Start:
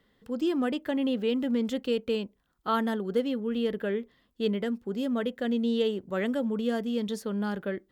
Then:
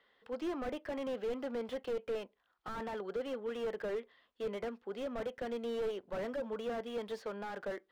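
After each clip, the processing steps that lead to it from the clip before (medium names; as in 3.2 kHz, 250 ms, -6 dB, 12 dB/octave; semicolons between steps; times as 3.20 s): three-band isolator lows -22 dB, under 470 Hz, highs -21 dB, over 4.4 kHz; slew-rate limiter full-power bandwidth 8.9 Hz; trim +1.5 dB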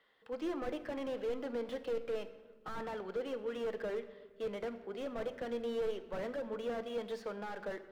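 simulated room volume 1200 m³, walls mixed, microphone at 0.58 m; trim -1 dB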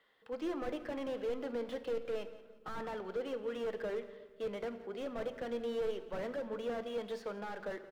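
feedback delay 175 ms, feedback 34%, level -18 dB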